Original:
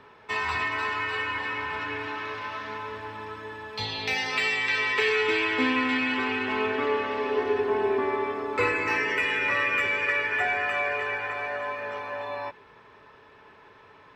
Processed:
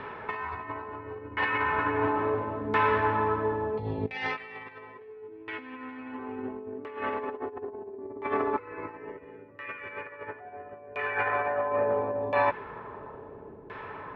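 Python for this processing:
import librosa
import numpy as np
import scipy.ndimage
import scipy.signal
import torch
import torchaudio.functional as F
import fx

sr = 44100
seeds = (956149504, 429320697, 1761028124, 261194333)

y = fx.over_compress(x, sr, threshold_db=-34.0, ratio=-0.5)
y = fx.filter_lfo_lowpass(y, sr, shape='saw_down', hz=0.73, low_hz=340.0, high_hz=2500.0, q=0.91)
y = F.gain(torch.from_numpy(y), 5.5).numpy()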